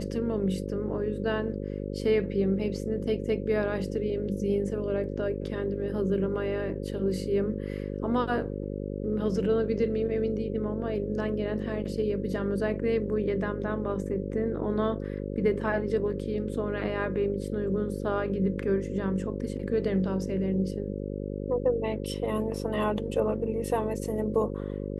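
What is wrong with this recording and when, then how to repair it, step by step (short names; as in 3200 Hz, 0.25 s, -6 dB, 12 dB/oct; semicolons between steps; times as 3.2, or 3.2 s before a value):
buzz 50 Hz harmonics 11 -34 dBFS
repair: de-hum 50 Hz, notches 11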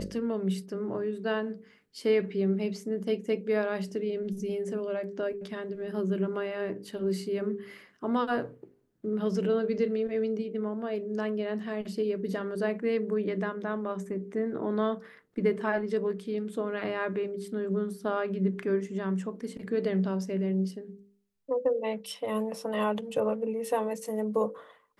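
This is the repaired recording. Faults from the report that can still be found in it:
none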